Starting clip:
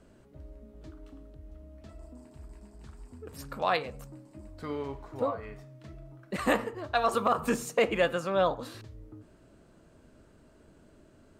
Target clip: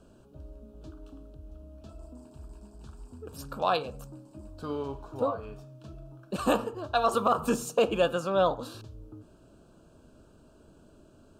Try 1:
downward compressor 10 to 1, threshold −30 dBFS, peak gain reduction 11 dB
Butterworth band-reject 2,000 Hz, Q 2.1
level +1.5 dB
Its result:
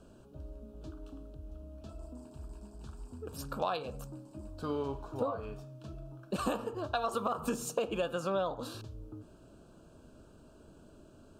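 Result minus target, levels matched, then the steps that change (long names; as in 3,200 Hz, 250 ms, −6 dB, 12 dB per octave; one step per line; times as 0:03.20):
downward compressor: peak gain reduction +11 dB
remove: downward compressor 10 to 1, threshold −30 dBFS, peak gain reduction 11 dB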